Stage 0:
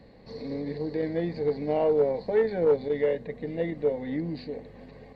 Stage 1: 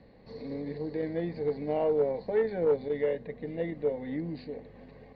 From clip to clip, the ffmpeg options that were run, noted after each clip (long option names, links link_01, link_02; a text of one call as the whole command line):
ffmpeg -i in.wav -af "lowpass=4200,volume=-3.5dB" out.wav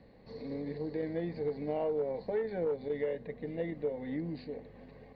ffmpeg -i in.wav -af "acompressor=threshold=-27dB:ratio=6,volume=-2dB" out.wav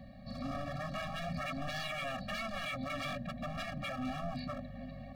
ffmpeg -i in.wav -af "aeval=exprs='0.0106*(abs(mod(val(0)/0.0106+3,4)-2)-1)':channel_layout=same,afftfilt=real='re*eq(mod(floor(b*sr/1024/270),2),0)':imag='im*eq(mod(floor(b*sr/1024/270),2),0)':win_size=1024:overlap=0.75,volume=9dB" out.wav